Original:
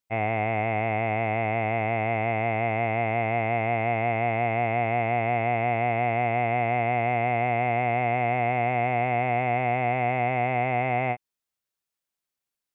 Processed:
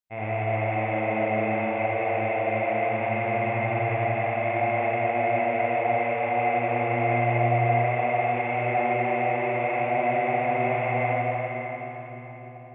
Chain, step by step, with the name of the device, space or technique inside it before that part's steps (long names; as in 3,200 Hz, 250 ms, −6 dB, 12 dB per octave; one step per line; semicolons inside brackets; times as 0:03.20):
dub delay into a spring reverb (feedback echo with a low-pass in the loop 302 ms, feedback 78%, low-pass 1,200 Hz, level −4 dB; spring reverb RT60 3.7 s, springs 37/50 ms, chirp 50 ms, DRR −7.5 dB)
level −8.5 dB